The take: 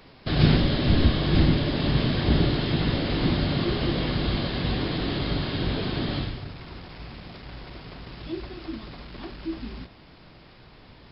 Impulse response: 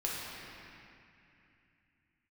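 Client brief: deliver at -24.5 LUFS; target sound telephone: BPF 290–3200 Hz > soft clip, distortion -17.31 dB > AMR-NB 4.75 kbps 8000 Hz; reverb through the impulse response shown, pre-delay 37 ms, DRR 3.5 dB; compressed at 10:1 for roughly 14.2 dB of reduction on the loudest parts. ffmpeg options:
-filter_complex "[0:a]acompressor=threshold=-29dB:ratio=10,asplit=2[a][b];[1:a]atrim=start_sample=2205,adelay=37[c];[b][c]afir=irnorm=-1:irlink=0,volume=-9dB[d];[a][d]amix=inputs=2:normalize=0,highpass=290,lowpass=3.2k,asoftclip=threshold=-31dB,volume=20dB" -ar 8000 -c:a libopencore_amrnb -b:a 4750

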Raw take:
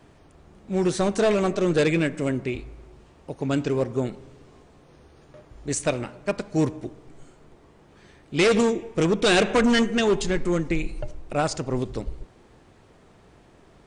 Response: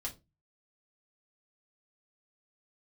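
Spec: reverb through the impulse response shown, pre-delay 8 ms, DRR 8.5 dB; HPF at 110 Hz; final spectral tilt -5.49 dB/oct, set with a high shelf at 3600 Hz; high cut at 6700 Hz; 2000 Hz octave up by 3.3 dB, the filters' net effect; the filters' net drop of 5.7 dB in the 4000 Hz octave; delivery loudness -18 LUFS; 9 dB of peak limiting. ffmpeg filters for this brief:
-filter_complex "[0:a]highpass=110,lowpass=6.7k,equalizer=f=2k:t=o:g=7.5,highshelf=f=3.6k:g=-4.5,equalizer=f=4k:t=o:g=-8,alimiter=limit=-16.5dB:level=0:latency=1,asplit=2[a][b];[1:a]atrim=start_sample=2205,adelay=8[c];[b][c]afir=irnorm=-1:irlink=0,volume=-8dB[d];[a][d]amix=inputs=2:normalize=0,volume=9dB"

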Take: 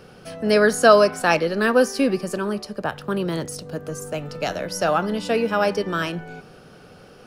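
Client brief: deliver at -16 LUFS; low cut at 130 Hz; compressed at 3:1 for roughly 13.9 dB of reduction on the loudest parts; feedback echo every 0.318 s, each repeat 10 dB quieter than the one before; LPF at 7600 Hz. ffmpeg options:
-af "highpass=130,lowpass=7.6k,acompressor=threshold=-27dB:ratio=3,aecho=1:1:318|636|954|1272:0.316|0.101|0.0324|0.0104,volume=13.5dB"

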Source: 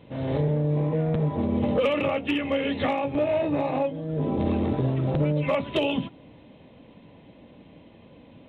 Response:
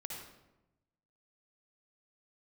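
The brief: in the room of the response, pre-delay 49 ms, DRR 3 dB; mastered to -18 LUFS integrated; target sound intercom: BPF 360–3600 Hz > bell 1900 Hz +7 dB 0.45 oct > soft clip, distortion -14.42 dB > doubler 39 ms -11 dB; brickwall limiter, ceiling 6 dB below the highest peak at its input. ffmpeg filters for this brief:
-filter_complex "[0:a]alimiter=limit=-22dB:level=0:latency=1,asplit=2[a][b];[1:a]atrim=start_sample=2205,adelay=49[c];[b][c]afir=irnorm=-1:irlink=0,volume=-1.5dB[d];[a][d]amix=inputs=2:normalize=0,highpass=360,lowpass=3.6k,equalizer=f=1.9k:t=o:w=0.45:g=7,asoftclip=threshold=-26.5dB,asplit=2[e][f];[f]adelay=39,volume=-11dB[g];[e][g]amix=inputs=2:normalize=0,volume=15dB"

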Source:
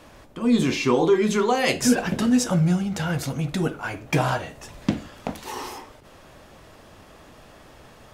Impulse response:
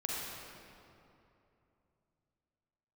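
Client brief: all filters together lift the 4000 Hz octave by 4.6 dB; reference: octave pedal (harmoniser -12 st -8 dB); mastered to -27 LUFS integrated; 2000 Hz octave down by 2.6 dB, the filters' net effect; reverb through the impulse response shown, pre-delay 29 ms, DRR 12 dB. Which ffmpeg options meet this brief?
-filter_complex "[0:a]equalizer=f=2k:t=o:g=-6,equalizer=f=4k:t=o:g=8,asplit=2[a][b];[1:a]atrim=start_sample=2205,adelay=29[c];[b][c]afir=irnorm=-1:irlink=0,volume=-16dB[d];[a][d]amix=inputs=2:normalize=0,asplit=2[e][f];[f]asetrate=22050,aresample=44100,atempo=2,volume=-8dB[g];[e][g]amix=inputs=2:normalize=0,volume=-5dB"

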